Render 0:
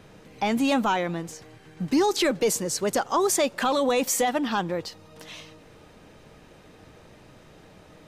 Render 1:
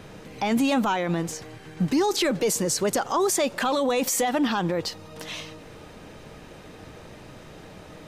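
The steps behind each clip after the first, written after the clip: peak limiter -22.5 dBFS, peak gain reduction 8.5 dB; trim +6.5 dB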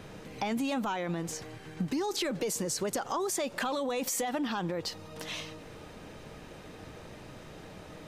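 compression, threshold -26 dBFS, peak gain reduction 7 dB; trim -3 dB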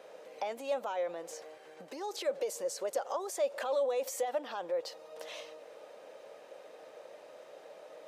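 resonant high-pass 550 Hz, resonance Q 4.9; trim -8.5 dB

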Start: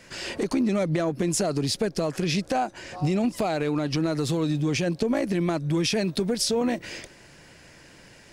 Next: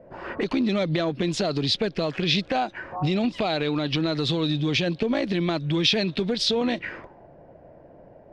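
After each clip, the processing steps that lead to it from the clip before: touch-sensitive low-pass 580–3700 Hz up, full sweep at -23 dBFS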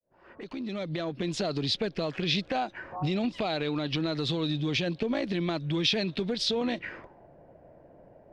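fade-in on the opening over 1.43 s; trim -5 dB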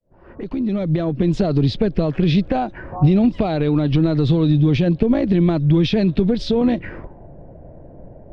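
tilt EQ -4 dB/octave; trim +6 dB

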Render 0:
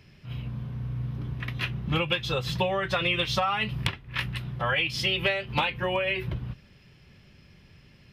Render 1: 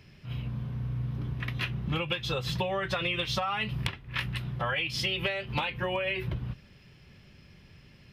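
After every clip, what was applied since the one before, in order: compression 4:1, threshold -27 dBFS, peak gain reduction 6.5 dB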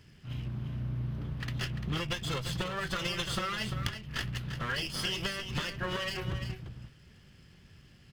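comb filter that takes the minimum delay 0.63 ms; delay 345 ms -9 dB; trim -2 dB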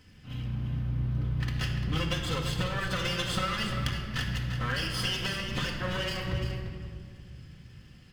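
simulated room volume 3300 m³, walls mixed, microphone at 2 m

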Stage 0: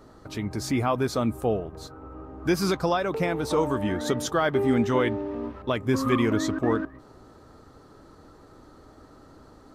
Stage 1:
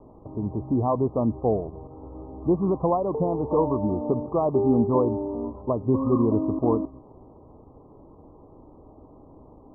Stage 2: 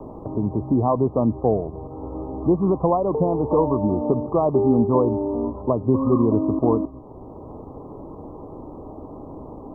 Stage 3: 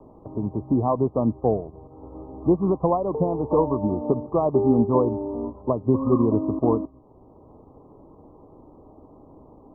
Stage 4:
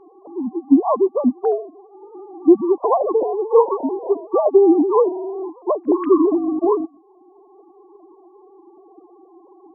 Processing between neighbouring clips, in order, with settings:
steep low-pass 1.1 kHz 96 dB/octave; trim +2 dB
three bands compressed up and down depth 40%; trim +3.5 dB
upward expansion 1.5:1, over -37 dBFS
formants replaced by sine waves; trim +5 dB

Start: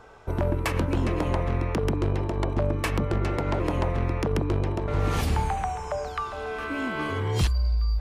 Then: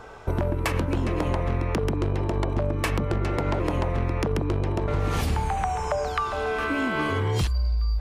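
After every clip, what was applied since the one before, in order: compression, threshold -28 dBFS, peak gain reduction 9 dB; trim +6.5 dB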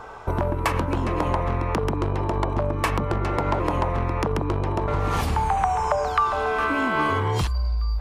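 peaking EQ 1 kHz +8 dB 1 oct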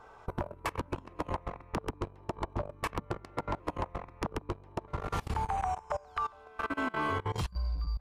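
level held to a coarse grid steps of 23 dB; trim -8 dB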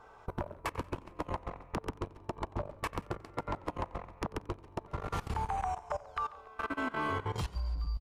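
frequency-shifting echo 140 ms, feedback 63%, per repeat -37 Hz, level -21 dB; modulated delay 90 ms, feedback 55%, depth 119 cents, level -22 dB; trim -2 dB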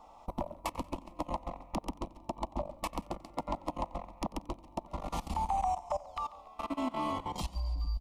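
static phaser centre 420 Hz, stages 6; trim +4 dB

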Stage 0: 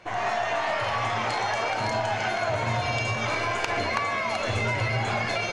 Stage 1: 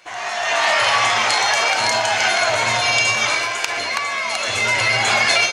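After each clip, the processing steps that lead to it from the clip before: tilt EQ +4 dB/octave; level rider gain up to 12 dB; trim -1 dB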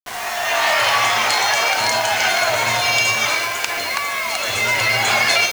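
bit crusher 5-bit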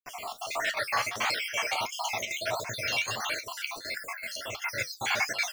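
random holes in the spectrogram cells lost 61%; square tremolo 2.6 Hz, depth 65%, duty 85%; flange 1.5 Hz, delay 5.6 ms, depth 9.4 ms, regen -56%; trim -5 dB

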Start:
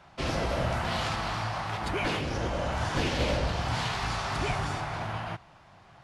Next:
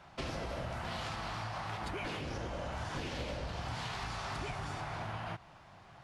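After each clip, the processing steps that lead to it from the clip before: compression 6:1, threshold -35 dBFS, peak gain reduction 12 dB; trim -1.5 dB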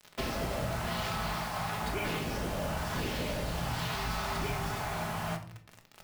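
bit crusher 8-bit; simulated room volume 520 m³, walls furnished, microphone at 1.4 m; trim +3.5 dB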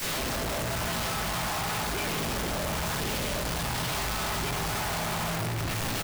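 one-bit comparator; delay 683 ms -12 dB; trim +4 dB

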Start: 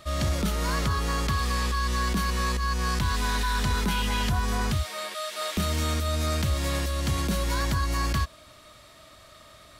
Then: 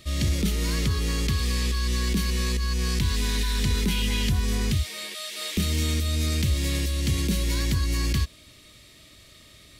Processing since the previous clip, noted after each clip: high-order bell 950 Hz -13 dB; trim +2.5 dB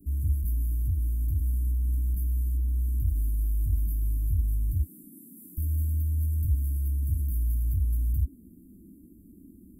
inverse Chebyshev band-stop 320–4900 Hz, stop band 60 dB; band noise 170–320 Hz -52 dBFS

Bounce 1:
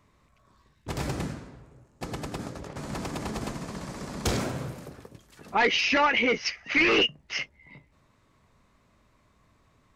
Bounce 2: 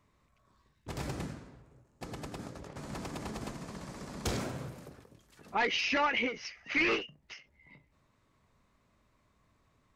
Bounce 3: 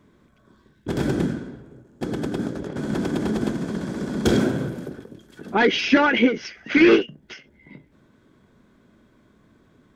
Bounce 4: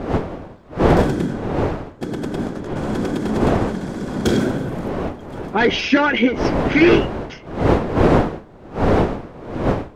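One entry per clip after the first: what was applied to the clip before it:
endings held to a fixed fall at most 160 dB/s; trim -6.5 dB
small resonant body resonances 230/340/1500/3300 Hz, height 13 dB, ringing for 20 ms; trim +5.5 dB
wind noise 510 Hz -23 dBFS; trim +1.5 dB

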